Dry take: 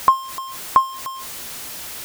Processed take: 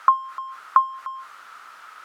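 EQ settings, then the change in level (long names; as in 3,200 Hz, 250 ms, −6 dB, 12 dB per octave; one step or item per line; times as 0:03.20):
resonant band-pass 1,300 Hz, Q 7.4
+8.0 dB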